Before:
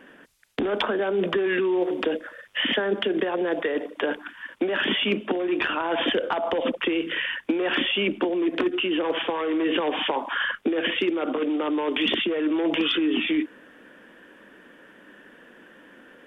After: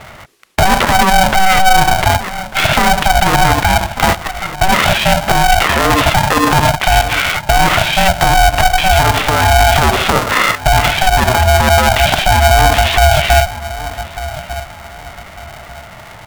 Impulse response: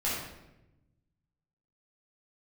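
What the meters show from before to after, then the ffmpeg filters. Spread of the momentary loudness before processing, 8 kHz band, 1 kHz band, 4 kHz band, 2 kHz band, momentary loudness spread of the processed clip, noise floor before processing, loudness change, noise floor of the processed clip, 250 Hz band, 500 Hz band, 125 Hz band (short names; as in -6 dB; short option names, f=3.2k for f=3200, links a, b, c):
5 LU, n/a, +22.0 dB, +12.0 dB, +15.0 dB, 14 LU, -52 dBFS, +13.5 dB, -34 dBFS, +4.0 dB, +9.0 dB, +29.5 dB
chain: -filter_complex "[0:a]highshelf=f=3.7k:g=-8.5,acrossover=split=2600[a][b];[b]acompressor=threshold=-39dB:ratio=4:attack=1:release=60[c];[a][c]amix=inputs=2:normalize=0,asplit=2[d][e];[e]adelay=1196,lowpass=f=1.4k:p=1,volume=-15dB,asplit=2[f][g];[g]adelay=1196,lowpass=f=1.4k:p=1,volume=0.3,asplit=2[h][i];[i]adelay=1196,lowpass=f=1.4k:p=1,volume=0.3[j];[f][h][j]amix=inputs=3:normalize=0[k];[d][k]amix=inputs=2:normalize=0,alimiter=level_in=17dB:limit=-1dB:release=50:level=0:latency=1,aeval=exprs='val(0)*sgn(sin(2*PI*380*n/s))':c=same,volume=-1dB"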